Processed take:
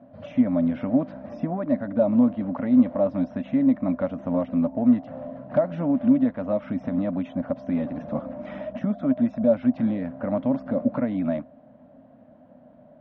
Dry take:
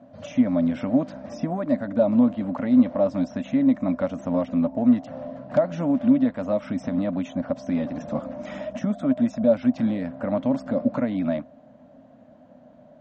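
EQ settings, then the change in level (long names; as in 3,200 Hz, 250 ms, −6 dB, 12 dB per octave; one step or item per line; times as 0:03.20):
high-frequency loss of the air 320 metres
0.0 dB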